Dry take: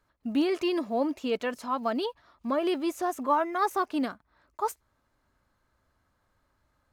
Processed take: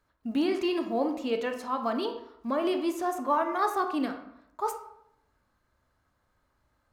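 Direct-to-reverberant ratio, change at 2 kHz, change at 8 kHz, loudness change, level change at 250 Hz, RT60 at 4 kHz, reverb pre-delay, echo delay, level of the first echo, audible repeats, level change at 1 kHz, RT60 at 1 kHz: 5.5 dB, -0.5 dB, -1.5 dB, -0.5 dB, -0.5 dB, 0.50 s, 24 ms, no echo, no echo, no echo, 0.0 dB, 0.70 s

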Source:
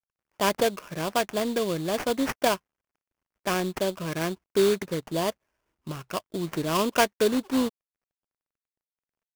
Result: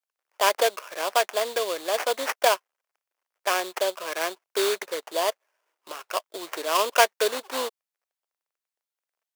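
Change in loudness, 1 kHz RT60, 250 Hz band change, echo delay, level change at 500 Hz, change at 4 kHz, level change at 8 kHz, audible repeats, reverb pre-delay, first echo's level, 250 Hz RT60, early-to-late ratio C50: +1.5 dB, no reverb, -13.5 dB, no echo, +0.5 dB, +4.0 dB, +4.0 dB, no echo, no reverb, no echo, no reverb, no reverb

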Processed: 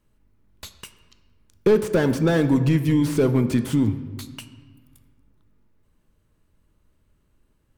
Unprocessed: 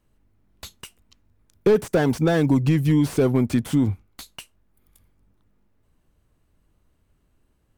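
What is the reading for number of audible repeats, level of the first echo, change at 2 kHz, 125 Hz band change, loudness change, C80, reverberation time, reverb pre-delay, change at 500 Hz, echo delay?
no echo, no echo, +0.5 dB, -0.5 dB, 0.0 dB, 13.0 dB, 1.5 s, 3 ms, +0.5 dB, no echo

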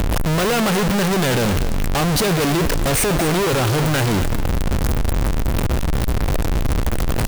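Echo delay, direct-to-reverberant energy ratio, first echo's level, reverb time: 239 ms, no reverb, -12.5 dB, no reverb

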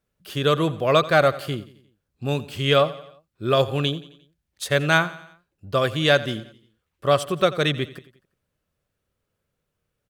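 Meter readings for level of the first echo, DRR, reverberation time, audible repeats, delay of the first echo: -17.5 dB, no reverb, no reverb, 3, 88 ms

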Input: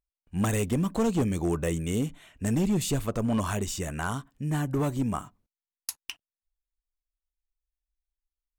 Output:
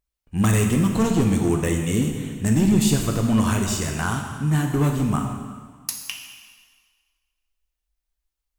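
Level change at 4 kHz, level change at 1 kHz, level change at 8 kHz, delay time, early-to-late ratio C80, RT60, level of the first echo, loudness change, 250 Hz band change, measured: +8.0 dB, +5.5 dB, +8.0 dB, no echo, 5.5 dB, 1.6 s, no echo, +7.5 dB, +7.5 dB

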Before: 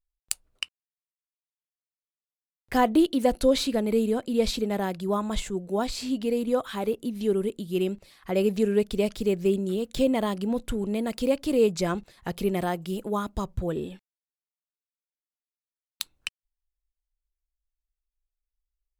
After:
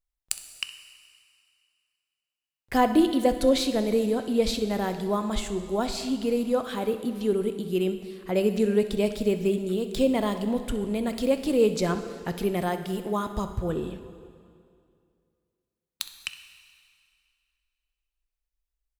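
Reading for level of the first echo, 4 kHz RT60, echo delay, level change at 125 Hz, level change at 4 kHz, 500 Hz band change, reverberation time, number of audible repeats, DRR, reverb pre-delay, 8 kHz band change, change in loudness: -17.0 dB, 2.2 s, 64 ms, +0.5 dB, +0.5 dB, +0.5 dB, 2.4 s, 1, 8.5 dB, 5 ms, +0.5 dB, +0.5 dB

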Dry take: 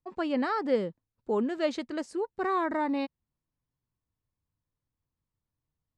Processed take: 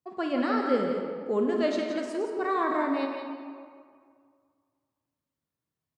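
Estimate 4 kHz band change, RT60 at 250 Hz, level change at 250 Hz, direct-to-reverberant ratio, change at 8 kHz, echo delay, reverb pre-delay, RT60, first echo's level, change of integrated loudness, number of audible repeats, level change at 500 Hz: +2.0 dB, 2.1 s, +2.5 dB, 1.0 dB, no reading, 171 ms, 24 ms, 2.0 s, -7.5 dB, +2.0 dB, 1, +3.0 dB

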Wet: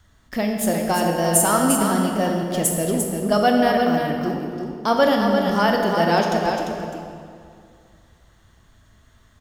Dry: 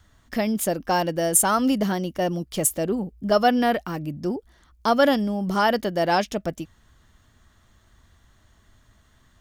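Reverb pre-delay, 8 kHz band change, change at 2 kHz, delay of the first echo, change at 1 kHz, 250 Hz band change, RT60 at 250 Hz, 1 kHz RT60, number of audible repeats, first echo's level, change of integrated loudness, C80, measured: 21 ms, +2.5 dB, +3.0 dB, 347 ms, +3.0 dB, +3.5 dB, 2.3 s, 2.3 s, 1, -6.0 dB, +3.0 dB, 1.5 dB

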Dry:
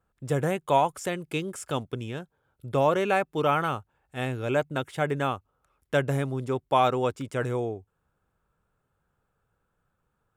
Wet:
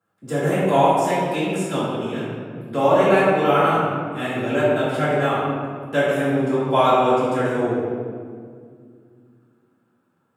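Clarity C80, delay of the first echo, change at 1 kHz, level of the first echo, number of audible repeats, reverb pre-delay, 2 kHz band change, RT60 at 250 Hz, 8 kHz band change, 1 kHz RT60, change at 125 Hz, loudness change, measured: 0.5 dB, no echo, +7.5 dB, no echo, no echo, 3 ms, +7.5 dB, 3.3 s, no reading, 1.8 s, +4.5 dB, +7.5 dB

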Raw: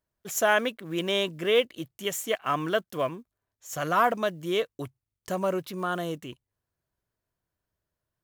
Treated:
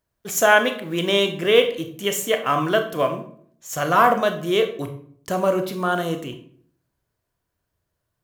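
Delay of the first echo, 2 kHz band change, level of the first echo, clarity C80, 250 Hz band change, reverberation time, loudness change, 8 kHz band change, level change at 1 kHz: no echo, +8.0 dB, no echo, 14.0 dB, +7.0 dB, 0.60 s, +7.5 dB, +7.0 dB, +7.5 dB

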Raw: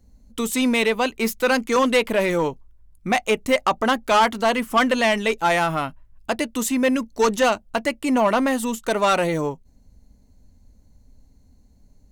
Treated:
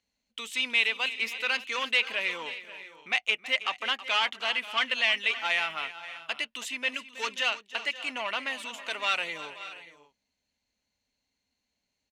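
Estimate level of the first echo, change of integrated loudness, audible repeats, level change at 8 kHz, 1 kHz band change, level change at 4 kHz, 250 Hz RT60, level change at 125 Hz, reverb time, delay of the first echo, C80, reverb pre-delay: -15.5 dB, -7.5 dB, 3, -13.0 dB, -13.5 dB, 0.0 dB, no reverb, under -25 dB, no reverb, 322 ms, no reverb, no reverb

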